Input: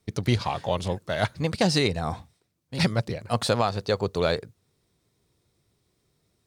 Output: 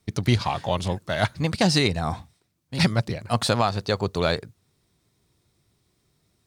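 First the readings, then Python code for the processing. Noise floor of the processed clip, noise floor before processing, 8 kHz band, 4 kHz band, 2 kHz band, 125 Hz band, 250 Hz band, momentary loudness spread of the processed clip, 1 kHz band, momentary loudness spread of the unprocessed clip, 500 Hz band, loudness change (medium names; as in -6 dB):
-71 dBFS, -73 dBFS, +3.0 dB, +3.0 dB, +3.0 dB, +3.0 dB, +2.5 dB, 8 LU, +2.5 dB, 8 LU, 0.0 dB, +2.0 dB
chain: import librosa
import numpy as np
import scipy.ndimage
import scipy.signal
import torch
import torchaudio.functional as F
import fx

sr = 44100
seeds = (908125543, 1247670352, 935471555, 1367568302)

y = fx.peak_eq(x, sr, hz=480.0, db=-5.0, octaves=0.59)
y = y * 10.0 ** (3.0 / 20.0)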